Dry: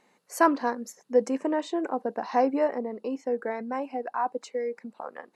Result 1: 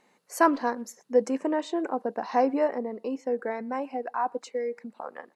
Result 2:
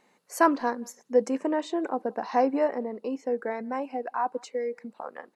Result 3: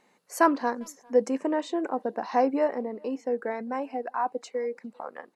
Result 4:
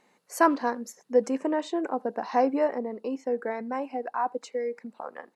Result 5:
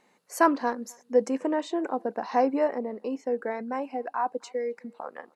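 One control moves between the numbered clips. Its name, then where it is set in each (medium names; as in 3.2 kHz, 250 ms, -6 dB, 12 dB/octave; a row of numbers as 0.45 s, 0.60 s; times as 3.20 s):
speakerphone echo, time: 120 ms, 180 ms, 400 ms, 80 ms, 260 ms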